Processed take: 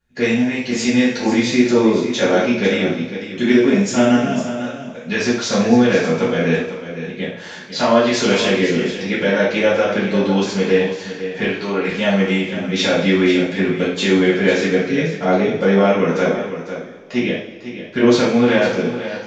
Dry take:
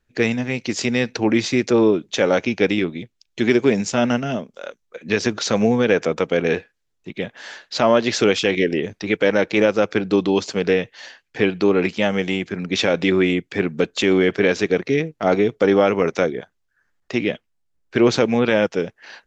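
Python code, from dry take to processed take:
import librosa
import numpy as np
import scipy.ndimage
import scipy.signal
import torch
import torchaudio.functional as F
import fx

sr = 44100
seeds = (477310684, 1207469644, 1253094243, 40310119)

y = fx.low_shelf(x, sr, hz=290.0, db=-11.5, at=(11.43, 11.88))
y = y + 10.0 ** (-11.0 / 20.0) * np.pad(y, (int(500 * sr / 1000.0), 0))[:len(y)]
y = fx.rev_double_slope(y, sr, seeds[0], early_s=0.51, late_s=2.4, knee_db=-18, drr_db=-9.0)
y = F.gain(torch.from_numpy(y), -7.0).numpy()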